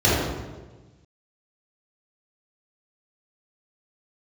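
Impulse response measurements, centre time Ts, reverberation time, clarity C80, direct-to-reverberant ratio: 99 ms, 1.3 s, 1.5 dB, -10.0 dB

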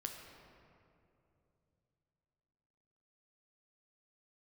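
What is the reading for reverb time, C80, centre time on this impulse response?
2.8 s, 5.0 dB, 68 ms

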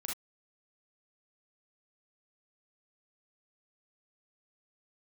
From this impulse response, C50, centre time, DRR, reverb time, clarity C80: 2.0 dB, 36 ms, -2.5 dB, not exponential, 20.5 dB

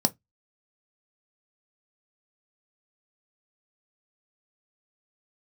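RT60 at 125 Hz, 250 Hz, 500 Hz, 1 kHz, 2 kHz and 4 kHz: 0.25, 0.20, 0.15, 0.15, 0.15, 0.15 s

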